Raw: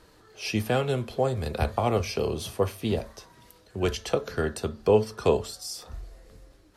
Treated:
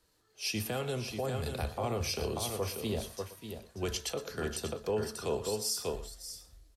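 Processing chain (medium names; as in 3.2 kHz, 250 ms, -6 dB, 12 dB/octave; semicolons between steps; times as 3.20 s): treble shelf 4.3 kHz +10.5 dB; delay 589 ms -7.5 dB; peak limiter -17.5 dBFS, peak gain reduction 8.5 dB; delay 118 ms -14 dB; three bands expanded up and down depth 40%; trim -6.5 dB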